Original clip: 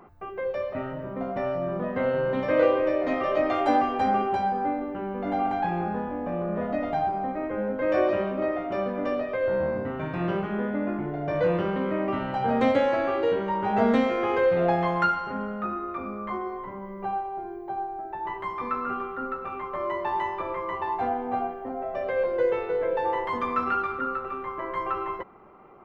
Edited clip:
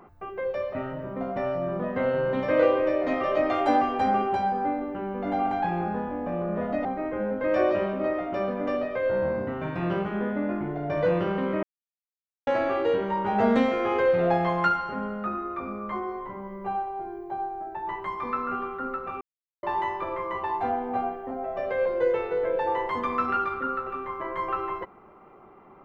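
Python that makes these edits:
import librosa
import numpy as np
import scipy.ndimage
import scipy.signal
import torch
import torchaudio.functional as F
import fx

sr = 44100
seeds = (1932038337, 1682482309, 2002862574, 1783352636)

y = fx.edit(x, sr, fx.cut(start_s=6.85, length_s=0.38),
    fx.silence(start_s=12.01, length_s=0.84),
    fx.silence(start_s=19.59, length_s=0.42), tone=tone)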